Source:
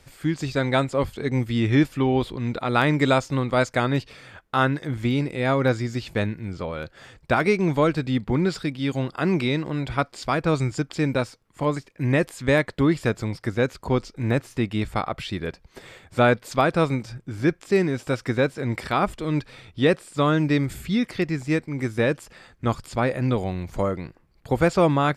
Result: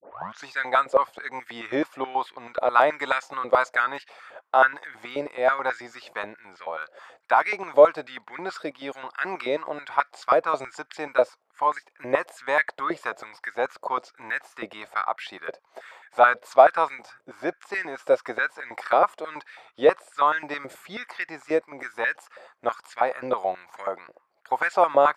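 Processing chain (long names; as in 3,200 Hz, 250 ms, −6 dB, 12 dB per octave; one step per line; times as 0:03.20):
turntable start at the beginning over 0.46 s
tilt shelving filter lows +5 dB, about 1,500 Hz
high-pass on a step sequencer 9.3 Hz 570–1,700 Hz
level −4 dB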